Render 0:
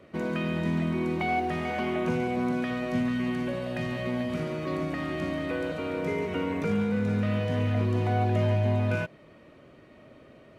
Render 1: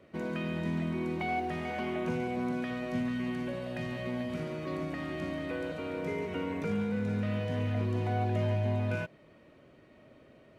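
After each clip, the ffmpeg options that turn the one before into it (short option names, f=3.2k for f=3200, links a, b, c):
-af "bandreject=f=1.2k:w=17,volume=-5dB"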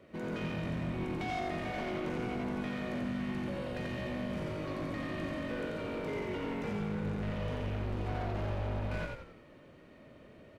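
-filter_complex "[0:a]asoftclip=type=tanh:threshold=-34.5dB,asplit=6[a][b][c][d][e][f];[b]adelay=88,afreqshift=-49,volume=-3dB[g];[c]adelay=176,afreqshift=-98,volume=-10.5dB[h];[d]adelay=264,afreqshift=-147,volume=-18.1dB[i];[e]adelay=352,afreqshift=-196,volume=-25.6dB[j];[f]adelay=440,afreqshift=-245,volume=-33.1dB[k];[a][g][h][i][j][k]amix=inputs=6:normalize=0"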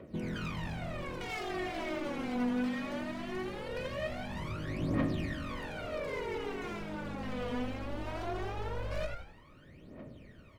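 -af "aeval=exprs='0.0251*(abs(mod(val(0)/0.0251+3,4)-2)-1)':c=same,aphaser=in_gain=1:out_gain=1:delay=4.2:decay=0.77:speed=0.2:type=triangular,volume=-2.5dB"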